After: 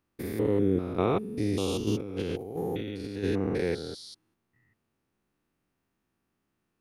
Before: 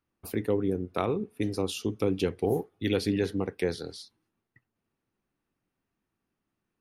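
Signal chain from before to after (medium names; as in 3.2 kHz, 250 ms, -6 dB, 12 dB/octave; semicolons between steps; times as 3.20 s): spectrogram pixelated in time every 200 ms; 1.87–3.24 s: compressor with a negative ratio -36 dBFS, ratio -0.5; trim +5 dB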